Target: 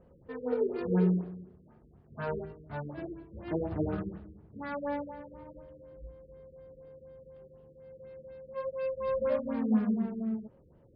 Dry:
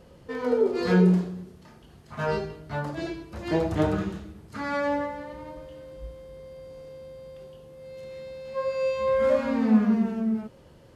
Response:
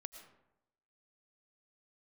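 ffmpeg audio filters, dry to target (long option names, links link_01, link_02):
-af "adynamicsmooth=sensitivity=4.5:basefreq=1400,afftfilt=real='re*lt(b*sr/1024,490*pow(5400/490,0.5+0.5*sin(2*PI*4.1*pts/sr)))':imag='im*lt(b*sr/1024,490*pow(5400/490,0.5+0.5*sin(2*PI*4.1*pts/sr)))':win_size=1024:overlap=0.75,volume=-7dB"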